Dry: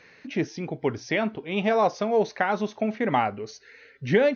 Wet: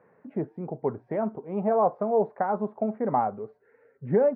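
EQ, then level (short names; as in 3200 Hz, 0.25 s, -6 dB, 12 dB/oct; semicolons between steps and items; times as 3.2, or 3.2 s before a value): HPF 140 Hz 12 dB/oct; LPF 1100 Hz 24 dB/oct; bell 300 Hz -6.5 dB 0.49 oct; 0.0 dB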